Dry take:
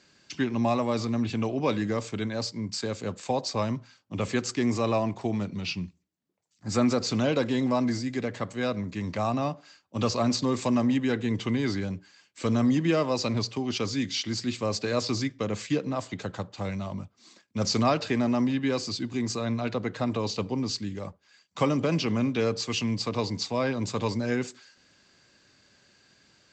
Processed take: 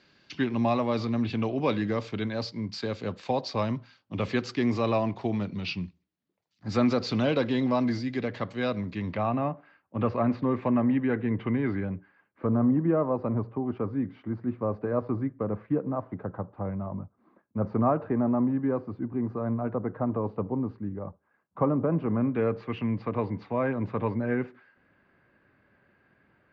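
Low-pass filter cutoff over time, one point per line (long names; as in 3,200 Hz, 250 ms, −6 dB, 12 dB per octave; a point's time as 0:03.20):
low-pass filter 24 dB per octave
0:08.90 4,500 Hz
0:09.50 2,100 Hz
0:11.91 2,100 Hz
0:12.52 1,300 Hz
0:21.96 1,300 Hz
0:22.50 2,000 Hz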